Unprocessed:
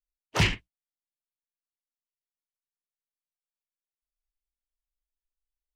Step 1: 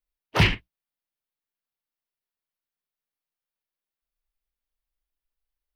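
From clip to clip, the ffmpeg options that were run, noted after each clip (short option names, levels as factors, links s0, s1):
-af "equalizer=f=7200:t=o:w=0.65:g=-13.5,volume=1.68"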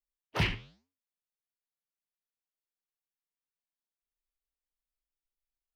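-af "flanger=delay=5.4:depth=9.5:regen=-88:speed=1.1:shape=sinusoidal,volume=0.562"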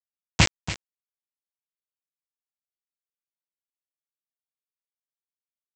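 -af "aresample=16000,acrusher=bits=3:mix=0:aa=0.000001,aresample=44100,aecho=1:1:284:0.224,volume=2.51"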